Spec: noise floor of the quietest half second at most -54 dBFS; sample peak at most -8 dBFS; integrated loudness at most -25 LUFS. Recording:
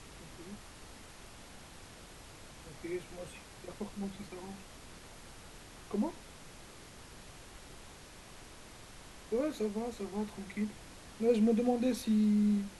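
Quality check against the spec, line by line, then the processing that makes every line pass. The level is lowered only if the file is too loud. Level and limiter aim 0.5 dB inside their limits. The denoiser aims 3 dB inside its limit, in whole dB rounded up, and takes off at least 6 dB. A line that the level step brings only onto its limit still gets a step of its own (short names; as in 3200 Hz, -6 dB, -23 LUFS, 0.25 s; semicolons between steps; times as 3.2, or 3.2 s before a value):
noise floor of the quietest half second -52 dBFS: fail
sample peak -18.0 dBFS: OK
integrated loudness -34.0 LUFS: OK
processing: denoiser 6 dB, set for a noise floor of -52 dBFS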